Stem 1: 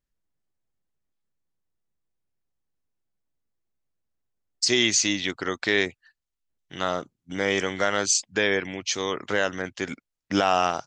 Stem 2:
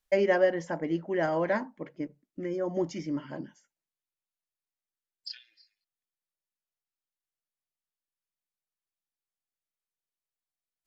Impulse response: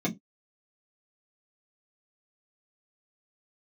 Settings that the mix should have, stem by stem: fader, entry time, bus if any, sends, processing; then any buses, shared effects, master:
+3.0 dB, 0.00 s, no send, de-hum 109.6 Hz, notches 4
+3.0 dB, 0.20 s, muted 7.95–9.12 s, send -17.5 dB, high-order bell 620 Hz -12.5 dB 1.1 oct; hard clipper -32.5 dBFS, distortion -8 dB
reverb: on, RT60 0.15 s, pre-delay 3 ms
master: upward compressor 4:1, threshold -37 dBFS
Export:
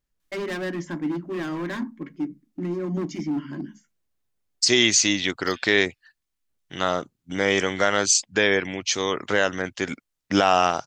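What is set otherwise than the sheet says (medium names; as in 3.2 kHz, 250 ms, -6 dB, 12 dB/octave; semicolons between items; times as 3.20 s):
stem 1: missing de-hum 109.6 Hz, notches 4; master: missing upward compressor 4:1, threshold -37 dBFS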